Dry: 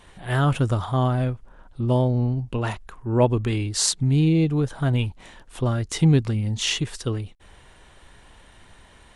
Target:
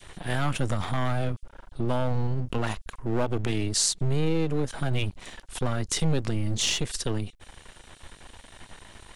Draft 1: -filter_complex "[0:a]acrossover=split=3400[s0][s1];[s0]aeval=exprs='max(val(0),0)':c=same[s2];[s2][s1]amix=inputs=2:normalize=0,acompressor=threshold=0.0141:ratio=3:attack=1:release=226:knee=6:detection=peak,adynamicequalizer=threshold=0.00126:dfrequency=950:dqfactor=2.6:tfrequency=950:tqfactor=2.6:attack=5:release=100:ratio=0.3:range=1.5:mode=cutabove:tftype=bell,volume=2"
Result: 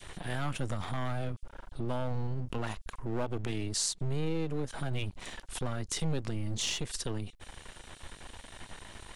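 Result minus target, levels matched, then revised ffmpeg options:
compression: peak gain reduction +7.5 dB
-filter_complex "[0:a]acrossover=split=3400[s0][s1];[s0]aeval=exprs='max(val(0),0)':c=same[s2];[s2][s1]amix=inputs=2:normalize=0,acompressor=threshold=0.0501:ratio=3:attack=1:release=226:knee=6:detection=peak,adynamicequalizer=threshold=0.00126:dfrequency=950:dqfactor=2.6:tfrequency=950:tqfactor=2.6:attack=5:release=100:ratio=0.3:range=1.5:mode=cutabove:tftype=bell,volume=2"

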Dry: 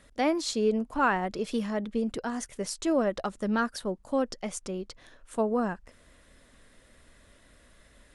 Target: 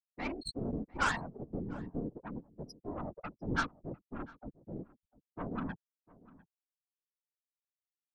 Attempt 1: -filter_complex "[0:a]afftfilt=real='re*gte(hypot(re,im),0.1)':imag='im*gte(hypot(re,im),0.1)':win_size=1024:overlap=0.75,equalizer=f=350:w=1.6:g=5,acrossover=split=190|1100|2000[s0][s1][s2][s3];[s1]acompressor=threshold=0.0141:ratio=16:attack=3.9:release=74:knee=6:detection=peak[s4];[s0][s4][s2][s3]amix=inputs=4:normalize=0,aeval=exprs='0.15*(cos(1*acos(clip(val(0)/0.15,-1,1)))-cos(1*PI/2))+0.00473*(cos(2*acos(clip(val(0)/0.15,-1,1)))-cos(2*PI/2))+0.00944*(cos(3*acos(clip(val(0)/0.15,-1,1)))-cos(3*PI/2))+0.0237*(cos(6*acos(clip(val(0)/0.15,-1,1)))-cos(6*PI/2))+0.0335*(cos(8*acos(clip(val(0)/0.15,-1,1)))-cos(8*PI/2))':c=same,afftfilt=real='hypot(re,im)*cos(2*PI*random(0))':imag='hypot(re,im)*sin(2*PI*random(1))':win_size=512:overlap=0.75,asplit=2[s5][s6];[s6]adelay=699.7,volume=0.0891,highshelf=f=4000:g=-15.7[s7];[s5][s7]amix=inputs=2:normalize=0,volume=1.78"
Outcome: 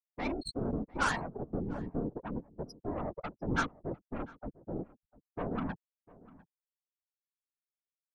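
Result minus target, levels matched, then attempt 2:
compression: peak gain reduction -10 dB
-filter_complex "[0:a]afftfilt=real='re*gte(hypot(re,im),0.1)':imag='im*gte(hypot(re,im),0.1)':win_size=1024:overlap=0.75,equalizer=f=350:w=1.6:g=5,acrossover=split=190|1100|2000[s0][s1][s2][s3];[s1]acompressor=threshold=0.00422:ratio=16:attack=3.9:release=74:knee=6:detection=peak[s4];[s0][s4][s2][s3]amix=inputs=4:normalize=0,aeval=exprs='0.15*(cos(1*acos(clip(val(0)/0.15,-1,1)))-cos(1*PI/2))+0.00473*(cos(2*acos(clip(val(0)/0.15,-1,1)))-cos(2*PI/2))+0.00944*(cos(3*acos(clip(val(0)/0.15,-1,1)))-cos(3*PI/2))+0.0237*(cos(6*acos(clip(val(0)/0.15,-1,1)))-cos(6*PI/2))+0.0335*(cos(8*acos(clip(val(0)/0.15,-1,1)))-cos(8*PI/2))':c=same,afftfilt=real='hypot(re,im)*cos(2*PI*random(0))':imag='hypot(re,im)*sin(2*PI*random(1))':win_size=512:overlap=0.75,asplit=2[s5][s6];[s6]adelay=699.7,volume=0.0891,highshelf=f=4000:g=-15.7[s7];[s5][s7]amix=inputs=2:normalize=0,volume=1.78"

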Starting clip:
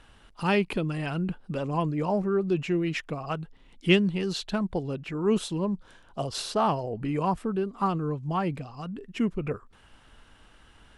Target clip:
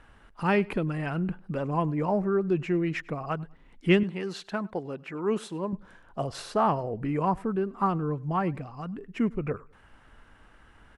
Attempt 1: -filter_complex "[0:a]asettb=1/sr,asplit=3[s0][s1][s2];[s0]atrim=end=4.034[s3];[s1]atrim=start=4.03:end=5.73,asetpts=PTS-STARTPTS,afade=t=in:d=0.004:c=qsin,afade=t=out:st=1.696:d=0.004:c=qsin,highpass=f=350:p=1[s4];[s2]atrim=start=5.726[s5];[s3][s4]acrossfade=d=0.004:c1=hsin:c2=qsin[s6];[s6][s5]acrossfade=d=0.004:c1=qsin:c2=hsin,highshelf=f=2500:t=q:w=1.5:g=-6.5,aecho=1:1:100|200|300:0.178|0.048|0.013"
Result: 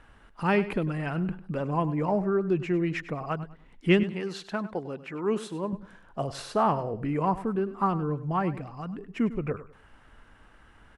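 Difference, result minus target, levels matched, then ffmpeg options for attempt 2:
echo-to-direct +9 dB
-filter_complex "[0:a]asettb=1/sr,asplit=3[s0][s1][s2];[s0]atrim=end=4.034[s3];[s1]atrim=start=4.03:end=5.73,asetpts=PTS-STARTPTS,afade=t=in:d=0.004:c=qsin,afade=t=out:st=1.696:d=0.004:c=qsin,highpass=f=350:p=1[s4];[s2]atrim=start=5.726[s5];[s3][s4]acrossfade=d=0.004:c1=hsin:c2=qsin[s6];[s6][s5]acrossfade=d=0.004:c1=qsin:c2=hsin,highshelf=f=2500:t=q:w=1.5:g=-6.5,aecho=1:1:100|200:0.0631|0.017"

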